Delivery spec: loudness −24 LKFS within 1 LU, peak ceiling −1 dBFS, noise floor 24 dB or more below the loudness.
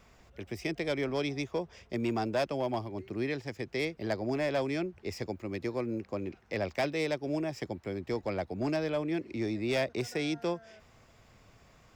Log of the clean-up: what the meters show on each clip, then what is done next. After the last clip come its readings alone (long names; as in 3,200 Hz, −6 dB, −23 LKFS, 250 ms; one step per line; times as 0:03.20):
share of clipped samples 0.7%; peaks flattened at −24.0 dBFS; integrated loudness −34.0 LKFS; sample peak −24.0 dBFS; target loudness −24.0 LKFS
→ clipped peaks rebuilt −24 dBFS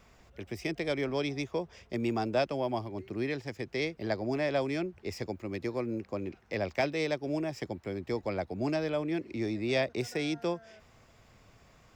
share of clipped samples 0.0%; integrated loudness −33.5 LKFS; sample peak −17.0 dBFS; target loudness −24.0 LKFS
→ level +9.5 dB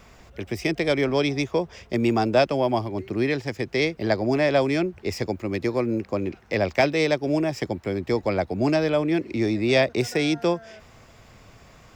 integrated loudness −24.0 LKFS; sample peak −7.5 dBFS; background noise floor −51 dBFS